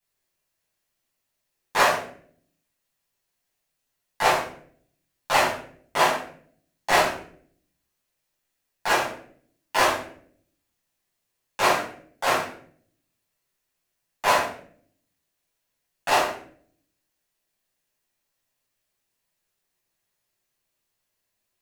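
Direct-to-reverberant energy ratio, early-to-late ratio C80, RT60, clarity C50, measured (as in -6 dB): -9.5 dB, 8.5 dB, 0.55 s, 4.5 dB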